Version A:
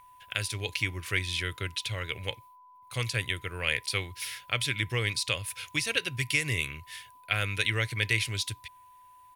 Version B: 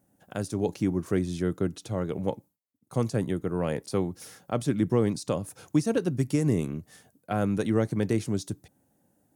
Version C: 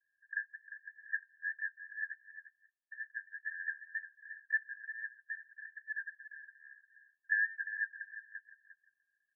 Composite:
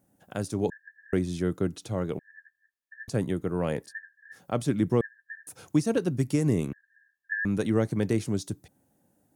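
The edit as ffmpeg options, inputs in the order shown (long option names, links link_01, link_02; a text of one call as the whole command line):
ffmpeg -i take0.wav -i take1.wav -i take2.wav -filter_complex "[2:a]asplit=5[link_01][link_02][link_03][link_04][link_05];[1:a]asplit=6[link_06][link_07][link_08][link_09][link_10][link_11];[link_06]atrim=end=0.702[link_12];[link_01]atrim=start=0.698:end=1.132[link_13];[link_07]atrim=start=1.128:end=2.192[link_14];[link_02]atrim=start=2.188:end=3.082[link_15];[link_08]atrim=start=3.078:end=3.93[link_16];[link_03]atrim=start=3.83:end=4.41[link_17];[link_09]atrim=start=4.31:end=5.012[link_18];[link_04]atrim=start=5.008:end=5.472[link_19];[link_10]atrim=start=5.468:end=6.732[link_20];[link_05]atrim=start=6.728:end=7.452[link_21];[link_11]atrim=start=7.448[link_22];[link_12][link_13]acrossfade=duration=0.004:curve1=hsin:curve2=hsin[link_23];[link_23][link_14]acrossfade=duration=0.004:curve1=hsin:curve2=hsin[link_24];[link_24][link_15]acrossfade=duration=0.004:curve1=hsin:curve2=hsin[link_25];[link_25][link_16]acrossfade=duration=0.004:curve1=hsin:curve2=hsin[link_26];[link_26][link_17]acrossfade=duration=0.1:curve1=tri:curve2=tri[link_27];[link_27][link_18]acrossfade=duration=0.1:curve1=tri:curve2=tri[link_28];[link_28][link_19]acrossfade=duration=0.004:curve1=hsin:curve2=hsin[link_29];[link_29][link_20]acrossfade=duration=0.004:curve1=hsin:curve2=hsin[link_30];[link_30][link_21]acrossfade=duration=0.004:curve1=hsin:curve2=hsin[link_31];[link_31][link_22]acrossfade=duration=0.004:curve1=hsin:curve2=hsin" out.wav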